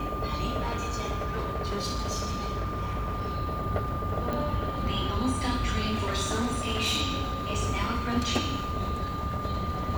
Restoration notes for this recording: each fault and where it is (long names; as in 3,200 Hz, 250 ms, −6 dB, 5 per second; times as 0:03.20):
whistle 1,200 Hz −34 dBFS
0:00.60–0:03.37: clipping −26.5 dBFS
0:04.33: click
0:05.89–0:07.02: clipping −23 dBFS